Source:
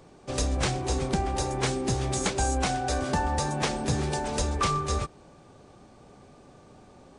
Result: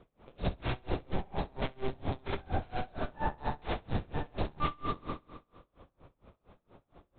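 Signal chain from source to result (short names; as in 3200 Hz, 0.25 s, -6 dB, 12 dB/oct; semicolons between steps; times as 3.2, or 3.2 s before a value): LPC vocoder at 8 kHz pitch kept; flutter echo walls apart 11.4 m, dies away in 1.2 s; dB-linear tremolo 4.3 Hz, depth 29 dB; gain -4 dB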